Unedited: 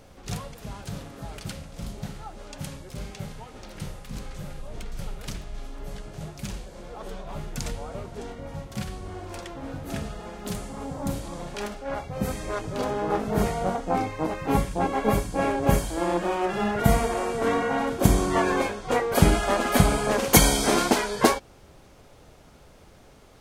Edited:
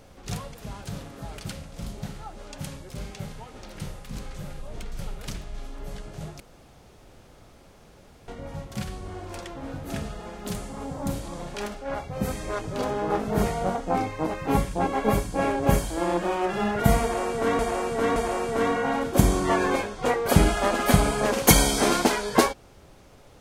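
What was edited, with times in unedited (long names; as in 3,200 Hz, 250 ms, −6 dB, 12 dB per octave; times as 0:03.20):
0:06.40–0:08.28: fill with room tone
0:17.02–0:17.59: repeat, 3 plays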